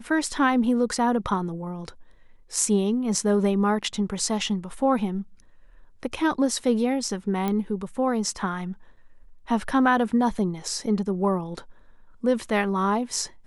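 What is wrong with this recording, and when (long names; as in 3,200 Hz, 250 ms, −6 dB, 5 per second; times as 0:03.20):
0:07.48: click −14 dBFS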